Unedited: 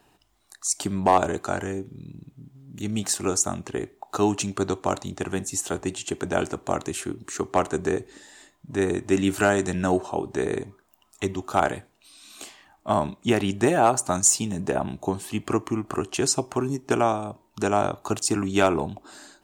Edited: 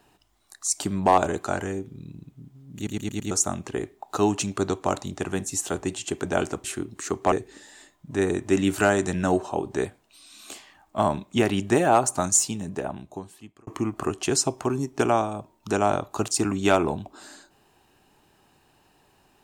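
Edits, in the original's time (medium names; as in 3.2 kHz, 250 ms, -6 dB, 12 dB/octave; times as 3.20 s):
2.76 s: stutter in place 0.11 s, 5 plays
6.64–6.93 s: delete
7.61–7.92 s: delete
10.45–11.76 s: delete
14.02–15.58 s: fade out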